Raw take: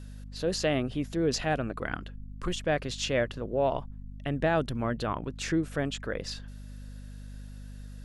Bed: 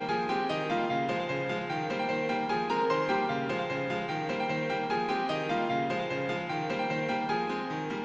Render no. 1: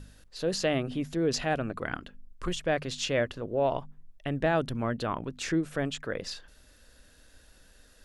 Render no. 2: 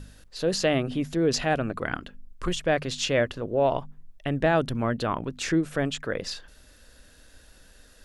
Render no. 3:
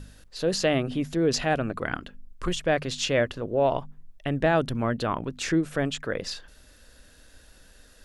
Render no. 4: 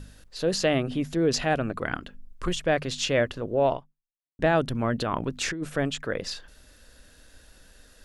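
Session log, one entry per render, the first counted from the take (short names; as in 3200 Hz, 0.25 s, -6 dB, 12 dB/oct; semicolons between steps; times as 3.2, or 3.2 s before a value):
de-hum 50 Hz, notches 5
gain +4 dB
nothing audible
3.72–4.39 fade out exponential; 4.93–5.7 negative-ratio compressor -28 dBFS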